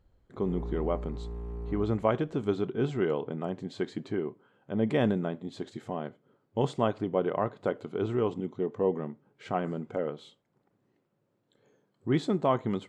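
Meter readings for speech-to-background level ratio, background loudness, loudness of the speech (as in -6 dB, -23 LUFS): 8.5 dB, -40.0 LUFS, -31.5 LUFS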